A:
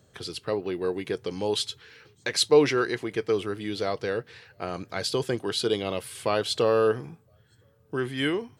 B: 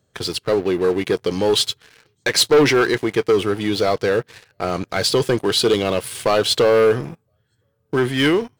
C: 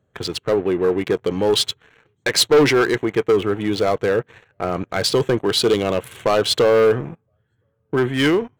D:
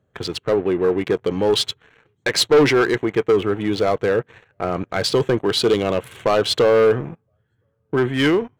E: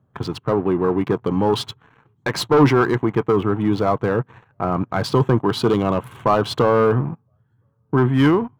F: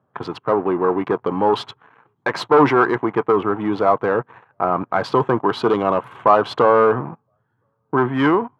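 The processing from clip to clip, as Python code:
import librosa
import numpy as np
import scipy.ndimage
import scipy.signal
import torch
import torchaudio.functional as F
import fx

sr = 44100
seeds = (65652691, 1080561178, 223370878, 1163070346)

y1 = fx.leveller(x, sr, passes=3)
y2 = fx.wiener(y1, sr, points=9)
y3 = fx.high_shelf(y2, sr, hz=6900.0, db=-6.5)
y4 = fx.graphic_eq(y3, sr, hz=(125, 250, 500, 1000, 2000, 4000, 8000), db=(9, 6, -5, 11, -5, -4, -6))
y4 = y4 * 10.0 ** (-2.0 / 20.0)
y5 = fx.bandpass_q(y4, sr, hz=950.0, q=0.67)
y5 = y5 * 10.0 ** (5.0 / 20.0)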